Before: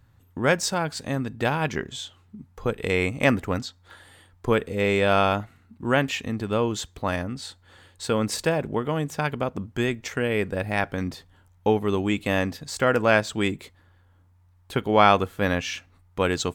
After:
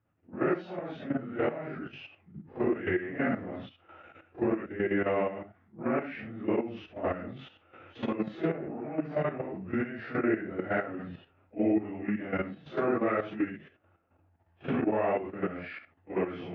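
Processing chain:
random phases in long frames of 200 ms
camcorder AGC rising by 11 dB per second
low-shelf EQ 400 Hz −2.5 dB
output level in coarse steps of 11 dB
formants moved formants −4 semitones
loudspeaker in its box 110–2,400 Hz, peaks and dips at 120 Hz −5 dB, 340 Hz +7 dB, 660 Hz +6 dB, 1,000 Hz −9 dB
level −6 dB

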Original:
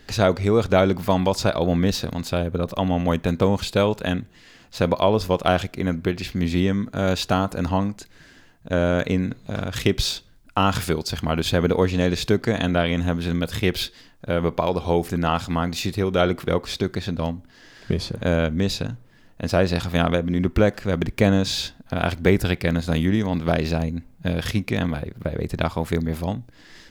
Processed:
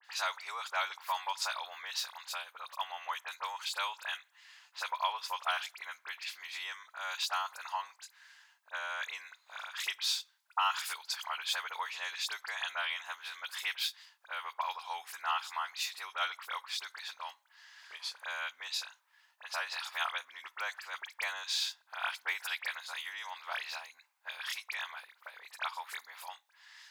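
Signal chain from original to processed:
Chebyshev high-pass filter 910 Hz, order 4
all-pass dispersion highs, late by 47 ms, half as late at 2,900 Hz
level −6.5 dB

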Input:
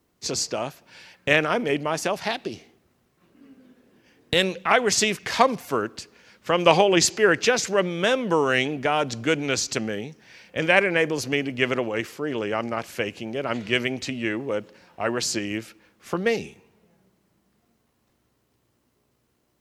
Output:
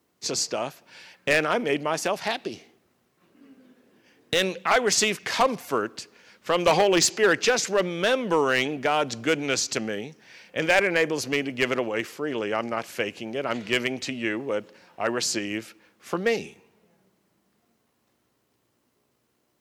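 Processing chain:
high-pass filter 190 Hz 6 dB per octave
gain into a clipping stage and back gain 13 dB

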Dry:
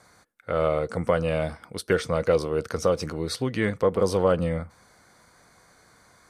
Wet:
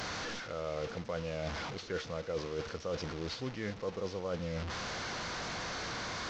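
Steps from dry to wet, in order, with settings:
linear delta modulator 32 kbit/s, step −27.5 dBFS
reversed playback
downward compressor 6 to 1, threshold −29 dBFS, peak gain reduction 13 dB
reversed playback
level −5 dB

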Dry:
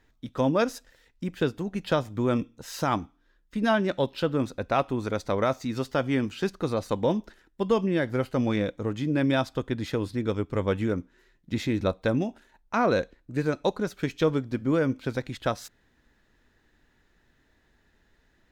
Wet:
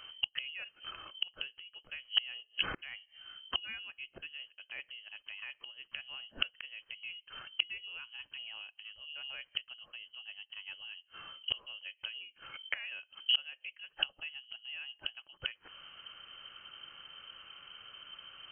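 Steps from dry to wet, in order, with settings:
gate with flip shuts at −29 dBFS, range −33 dB
voice inversion scrambler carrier 3,100 Hz
level +12 dB

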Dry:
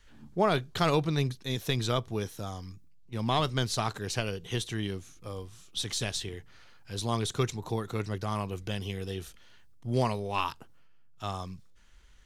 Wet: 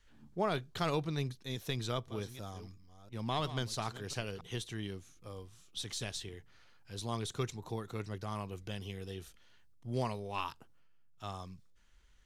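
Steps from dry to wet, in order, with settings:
0:01.70–0:04.41: delay that plays each chunk backwards 348 ms, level −13.5 dB
level −7.5 dB

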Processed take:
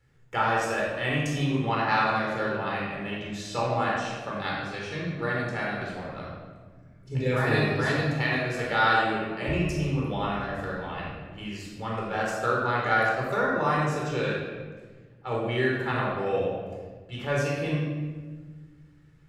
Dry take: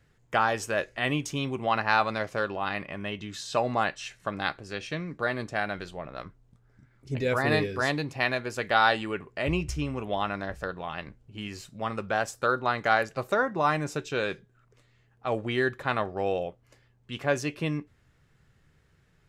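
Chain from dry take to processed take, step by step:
rectangular room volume 1,400 cubic metres, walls mixed, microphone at 4.2 metres
level −7 dB

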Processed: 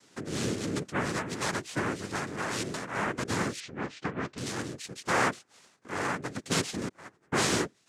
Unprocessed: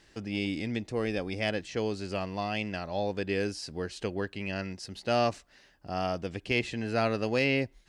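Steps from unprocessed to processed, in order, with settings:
0:06.88–0:07.32: noise gate −22 dBFS, range −35 dB
cochlear-implant simulation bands 3
0:03.60–0:04.38: high-frequency loss of the air 140 metres

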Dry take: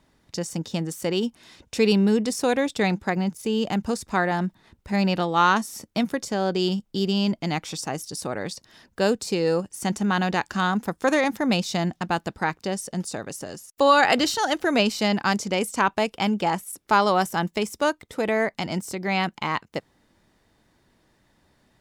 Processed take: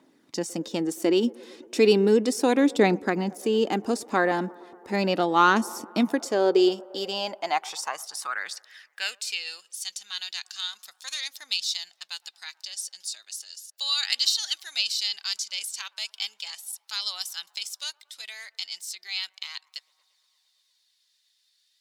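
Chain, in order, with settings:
delay with a band-pass on its return 115 ms, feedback 77%, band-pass 650 Hz, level −22 dB
phase shifter 0.35 Hz, delay 4 ms, feedback 32%
high-pass filter sweep 290 Hz → 4,000 Hz, 0:06.10–0:09.85
level −1.5 dB

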